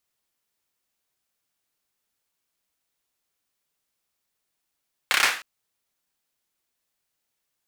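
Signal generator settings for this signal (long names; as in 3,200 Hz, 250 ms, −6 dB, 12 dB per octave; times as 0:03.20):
synth clap length 0.31 s, bursts 5, apart 30 ms, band 1,800 Hz, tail 0.40 s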